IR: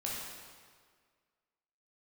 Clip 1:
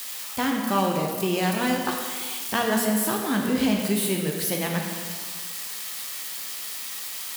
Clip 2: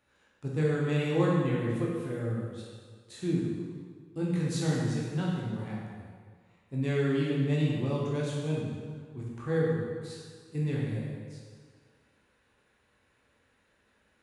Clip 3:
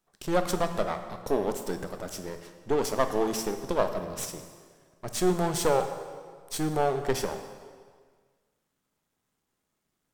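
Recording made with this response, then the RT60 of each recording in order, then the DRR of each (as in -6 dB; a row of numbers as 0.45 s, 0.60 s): 2; 1.8 s, 1.8 s, 1.8 s; 0.5 dB, -5.0 dB, 7.0 dB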